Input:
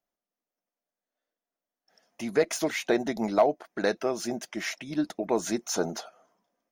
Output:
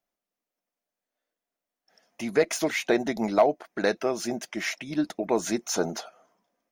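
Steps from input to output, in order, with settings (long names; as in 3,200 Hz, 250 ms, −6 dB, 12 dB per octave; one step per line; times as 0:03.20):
parametric band 2,300 Hz +2.5 dB 0.59 octaves
level +1.5 dB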